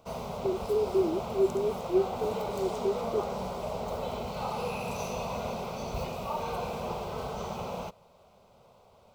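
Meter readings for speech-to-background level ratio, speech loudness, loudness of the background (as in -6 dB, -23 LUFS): 4.5 dB, -31.0 LUFS, -35.5 LUFS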